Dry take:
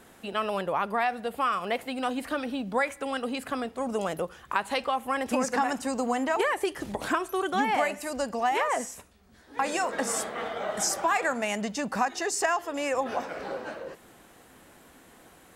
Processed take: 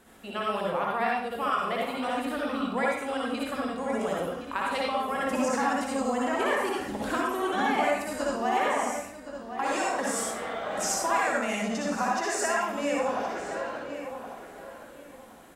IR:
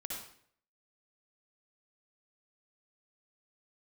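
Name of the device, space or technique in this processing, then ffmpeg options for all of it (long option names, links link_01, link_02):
bathroom: -filter_complex "[1:a]atrim=start_sample=2205[link_01];[0:a][link_01]afir=irnorm=-1:irlink=0,asplit=2[link_02][link_03];[link_03]adelay=1069,lowpass=frequency=3200:poles=1,volume=-9.5dB,asplit=2[link_04][link_05];[link_05]adelay=1069,lowpass=frequency=3200:poles=1,volume=0.25,asplit=2[link_06][link_07];[link_07]adelay=1069,lowpass=frequency=3200:poles=1,volume=0.25[link_08];[link_02][link_04][link_06][link_08]amix=inputs=4:normalize=0"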